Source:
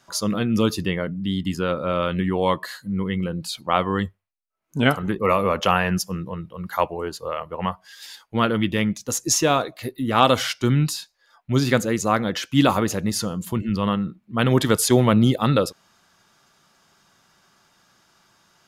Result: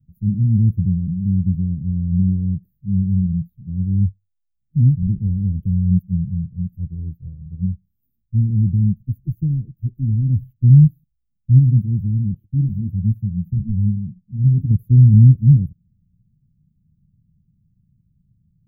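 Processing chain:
inverse Chebyshev band-stop filter 690–9,000 Hz, stop band 70 dB
low-shelf EQ 230 Hz +12 dB
0:12.34–0:14.71: flanger 1.2 Hz, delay 7.4 ms, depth 7.8 ms, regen +35%
level +4.5 dB

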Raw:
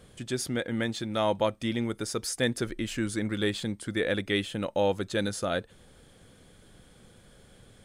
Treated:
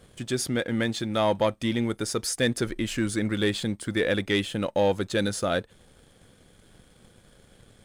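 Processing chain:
leveller curve on the samples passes 1

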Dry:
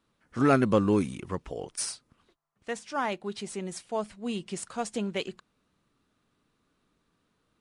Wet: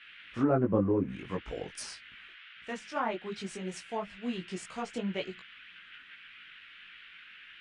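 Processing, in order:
noise in a band 1,400–3,200 Hz −49 dBFS
treble cut that deepens with the level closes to 840 Hz, closed at −21 dBFS
multi-voice chorus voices 6, 1.4 Hz, delay 19 ms, depth 3.2 ms

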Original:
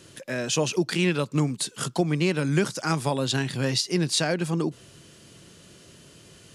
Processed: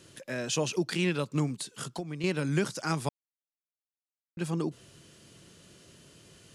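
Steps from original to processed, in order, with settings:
0:01.55–0:02.24: downward compressor 3 to 1, threshold −31 dBFS, peak gain reduction 10.5 dB
0:03.09–0:04.37: silence
level −5 dB

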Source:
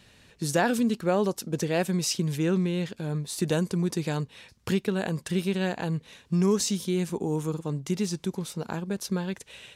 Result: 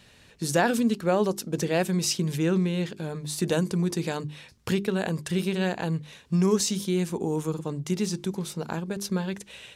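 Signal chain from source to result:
mains-hum notches 50/100/150/200/250/300/350/400 Hz
level +1.5 dB

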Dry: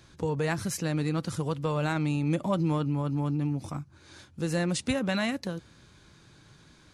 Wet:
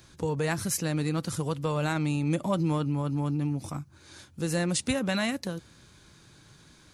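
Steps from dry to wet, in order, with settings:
high-shelf EQ 7,700 Hz +10 dB

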